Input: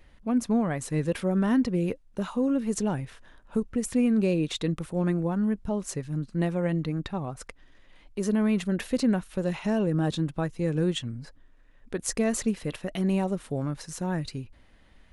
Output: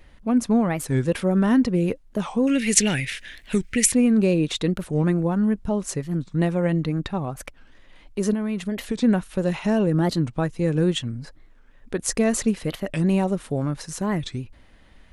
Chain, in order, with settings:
0:02.47–0:03.92: high shelf with overshoot 1,500 Hz +12.5 dB, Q 3
0:08.33–0:09.03: downward compressor 6 to 1, threshold −28 dBFS, peak gain reduction 8 dB
wow of a warped record 45 rpm, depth 250 cents
level +5 dB

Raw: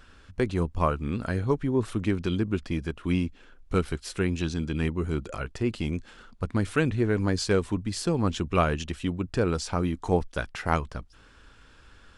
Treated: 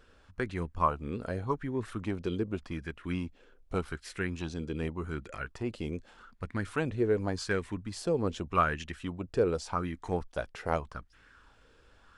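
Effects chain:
auto-filter bell 0.85 Hz 440–2,000 Hz +11 dB
level −8.5 dB

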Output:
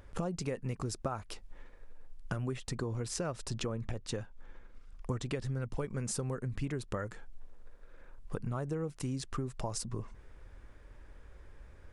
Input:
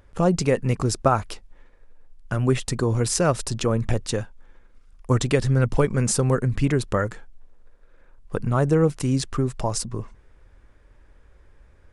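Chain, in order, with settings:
0:02.57–0:05.44: high-shelf EQ 9,800 Hz −11 dB
downward compressor 6 to 1, threshold −34 dBFS, peak gain reduction 19 dB

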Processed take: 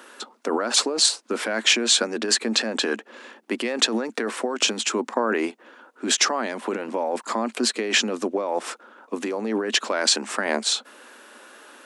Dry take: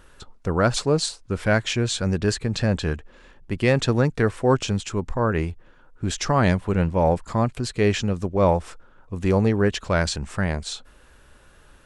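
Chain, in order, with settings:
compressor whose output falls as the input rises −25 dBFS, ratio −1
Chebyshev high-pass filter 220 Hz, order 6
low-shelf EQ 290 Hz −5 dB
level +6.5 dB

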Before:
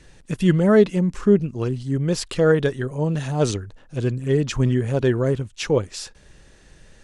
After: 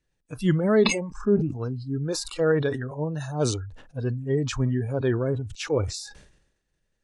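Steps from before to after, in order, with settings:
noise reduction from a noise print of the clip's start 23 dB
level that may fall only so fast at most 68 dB per second
level −5 dB

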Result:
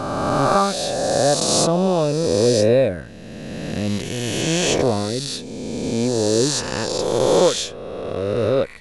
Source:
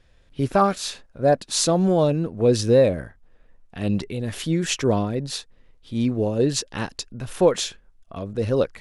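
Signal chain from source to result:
peak hold with a rise ahead of every peak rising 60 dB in 2.54 s
level −1.5 dB

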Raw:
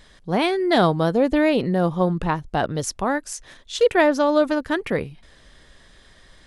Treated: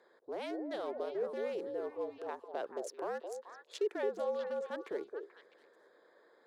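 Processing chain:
adaptive Wiener filter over 15 samples
brickwall limiter −14.5 dBFS, peak gain reduction 9.5 dB
downward compressor 1.5 to 1, threshold −43 dBFS, peak gain reduction 9 dB
frequency shifter −64 Hz
four-pole ladder high-pass 350 Hz, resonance 45%
on a send: echo through a band-pass that steps 218 ms, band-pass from 500 Hz, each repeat 1.4 octaves, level −3.5 dB

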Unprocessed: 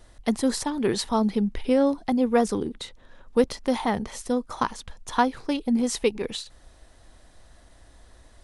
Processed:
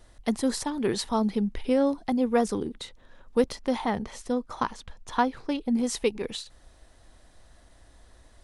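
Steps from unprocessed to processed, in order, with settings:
0:03.60–0:05.70: high-shelf EQ 10,000 Hz → 7,000 Hz −10.5 dB
level −2.5 dB

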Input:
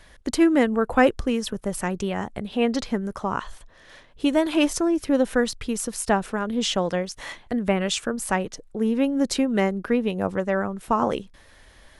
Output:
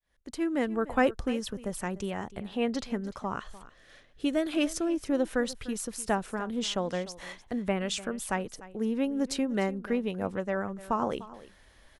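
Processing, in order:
fade in at the beginning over 0.80 s
0:03.34–0:04.88: parametric band 950 Hz −13 dB 0.2 octaves
single-tap delay 298 ms −17.5 dB
level −7 dB

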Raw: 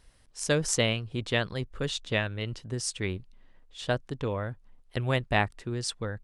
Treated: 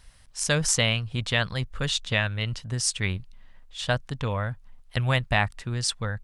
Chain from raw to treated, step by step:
parametric band 360 Hz −12.5 dB 1.2 octaves
in parallel at +2 dB: brickwall limiter −19.5 dBFS, peak gain reduction 10.5 dB

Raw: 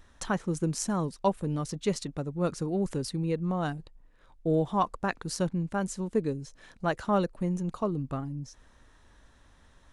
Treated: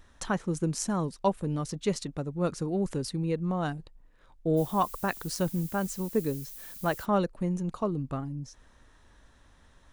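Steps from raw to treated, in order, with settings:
0:04.56–0:07.04: background noise violet −45 dBFS

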